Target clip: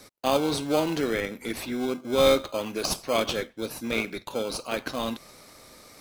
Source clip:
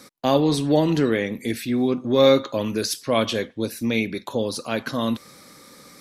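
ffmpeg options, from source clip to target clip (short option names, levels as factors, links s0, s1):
-filter_complex "[0:a]highpass=f=740:p=1,asplit=2[s0][s1];[s1]acrusher=samples=24:mix=1:aa=0.000001,volume=0.668[s2];[s0][s2]amix=inputs=2:normalize=0,volume=0.708"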